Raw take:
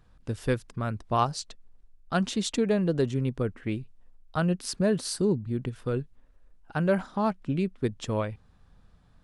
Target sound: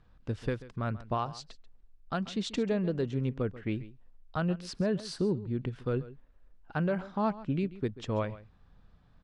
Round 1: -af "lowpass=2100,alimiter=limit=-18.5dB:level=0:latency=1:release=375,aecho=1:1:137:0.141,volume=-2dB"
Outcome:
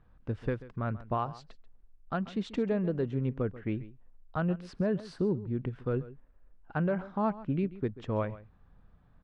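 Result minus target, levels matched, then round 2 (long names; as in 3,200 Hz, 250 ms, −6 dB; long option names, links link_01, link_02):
4,000 Hz band −9.0 dB
-af "lowpass=4600,alimiter=limit=-18.5dB:level=0:latency=1:release=375,aecho=1:1:137:0.141,volume=-2dB"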